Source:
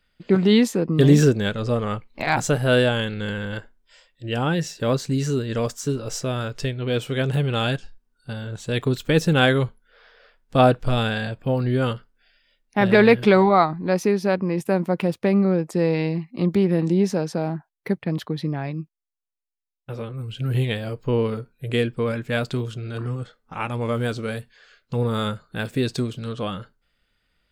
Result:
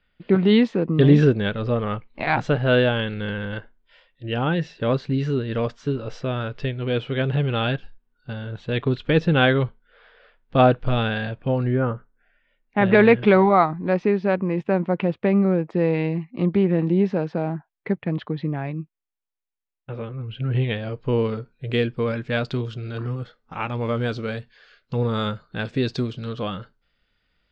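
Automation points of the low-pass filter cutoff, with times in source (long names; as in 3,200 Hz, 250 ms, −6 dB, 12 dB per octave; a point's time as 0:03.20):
low-pass filter 24 dB per octave
0:11.57 3,600 Hz
0:11.91 1,500 Hz
0:12.85 3,200 Hz
0:20.62 3,200 Hz
0:21.32 5,300 Hz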